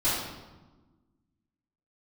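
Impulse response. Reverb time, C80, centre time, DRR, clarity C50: 1.2 s, 2.5 dB, 77 ms, −15.5 dB, −0.5 dB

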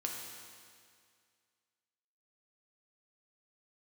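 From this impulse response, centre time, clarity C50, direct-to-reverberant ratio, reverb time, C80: 81 ms, 2.0 dB, −0.5 dB, 2.1 s, 3.5 dB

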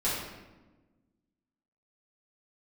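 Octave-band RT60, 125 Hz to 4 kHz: 1.7, 1.8, 1.3, 1.1, 0.95, 0.75 seconds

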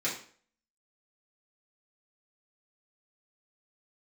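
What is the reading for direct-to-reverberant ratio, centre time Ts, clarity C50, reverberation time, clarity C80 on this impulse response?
−7.5 dB, 29 ms, 6.5 dB, 0.50 s, 10.5 dB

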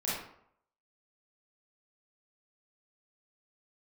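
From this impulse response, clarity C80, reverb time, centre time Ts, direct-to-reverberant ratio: 4.5 dB, 0.70 s, 65 ms, −8.5 dB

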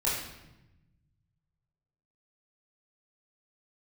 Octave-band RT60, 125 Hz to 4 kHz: 2.4, 1.6, 1.0, 0.90, 0.90, 0.75 seconds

